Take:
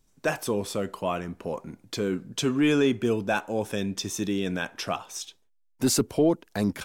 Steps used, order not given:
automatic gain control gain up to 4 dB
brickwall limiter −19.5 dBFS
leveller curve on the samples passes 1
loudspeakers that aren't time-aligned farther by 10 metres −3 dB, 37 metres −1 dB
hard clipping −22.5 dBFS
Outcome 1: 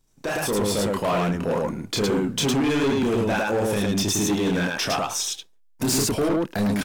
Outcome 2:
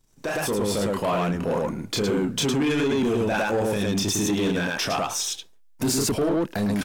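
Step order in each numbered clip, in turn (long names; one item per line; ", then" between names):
brickwall limiter, then leveller curve on the samples, then loudspeakers that aren't time-aligned, then hard clipping, then automatic gain control
loudspeakers that aren't time-aligned, then brickwall limiter, then hard clipping, then leveller curve on the samples, then automatic gain control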